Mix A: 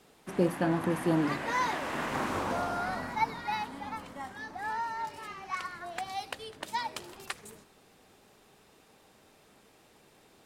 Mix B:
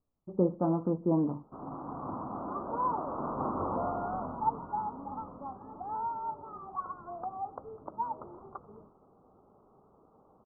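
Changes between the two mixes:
background: entry +1.25 s; master: add steep low-pass 1.3 kHz 96 dB/octave

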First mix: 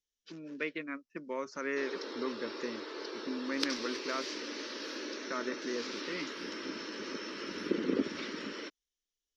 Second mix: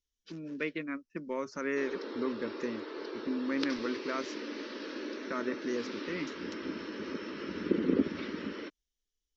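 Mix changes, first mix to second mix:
background: add distance through air 170 m; master: add bass shelf 200 Hz +12 dB

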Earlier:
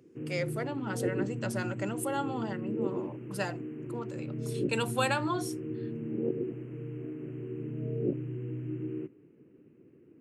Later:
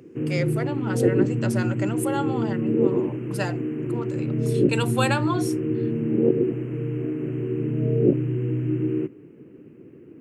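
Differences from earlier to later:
speech +5.0 dB; background +12.0 dB

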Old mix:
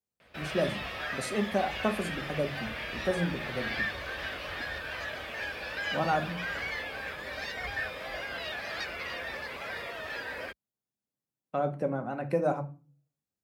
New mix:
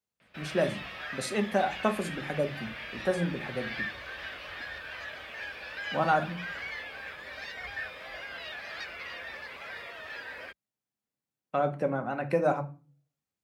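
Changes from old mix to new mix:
background -8.5 dB; master: add peaking EQ 2.2 kHz +6 dB 2.8 oct

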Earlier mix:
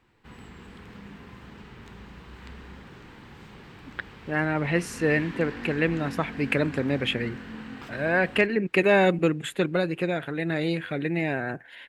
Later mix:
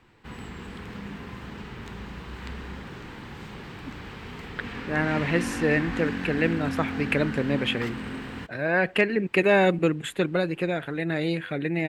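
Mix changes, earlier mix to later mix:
speech: entry +0.60 s; background +6.5 dB

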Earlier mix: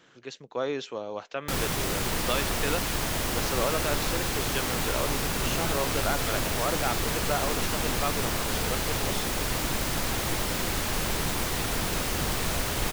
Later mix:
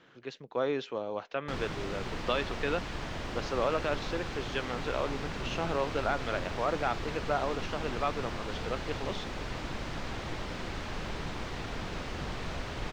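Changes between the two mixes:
background -7.0 dB; master: add distance through air 160 m

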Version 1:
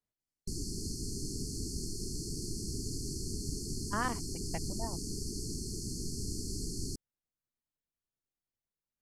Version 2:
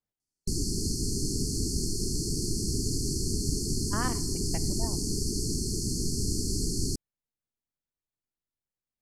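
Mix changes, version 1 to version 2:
background +8.5 dB; reverb: on, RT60 0.70 s

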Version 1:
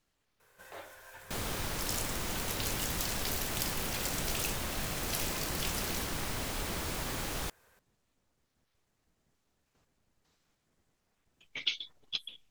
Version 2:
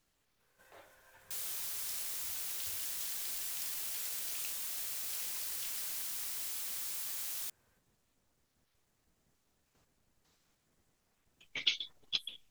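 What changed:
speech: add treble shelf 7.7 kHz +6.5 dB; first sound -10.5 dB; second sound: add pre-emphasis filter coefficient 0.97

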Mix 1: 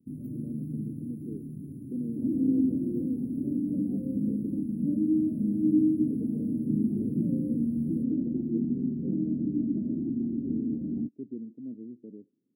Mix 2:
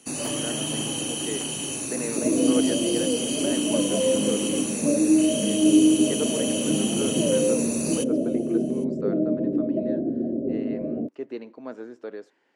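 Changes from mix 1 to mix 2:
speech -6.0 dB; second sound: add rippled Chebyshev low-pass 650 Hz, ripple 3 dB; master: remove inverse Chebyshev band-stop 1.2–6.3 kHz, stop band 80 dB

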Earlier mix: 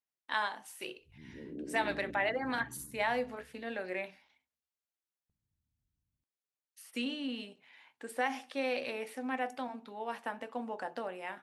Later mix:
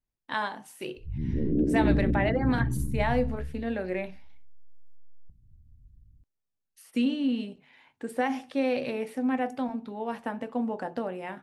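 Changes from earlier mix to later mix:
background +6.5 dB; master: remove high-pass 980 Hz 6 dB/octave

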